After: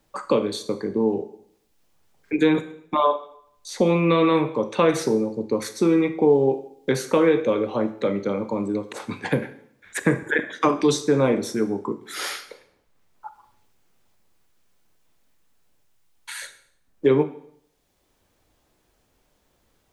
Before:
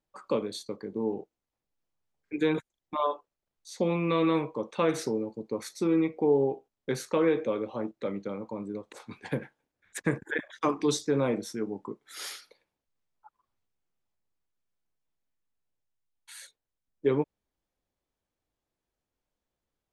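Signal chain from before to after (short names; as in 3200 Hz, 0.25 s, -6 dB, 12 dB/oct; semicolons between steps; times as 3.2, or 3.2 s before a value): reverb RT60 0.60 s, pre-delay 18 ms, DRR 10.5 dB; three-band squash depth 40%; gain +8 dB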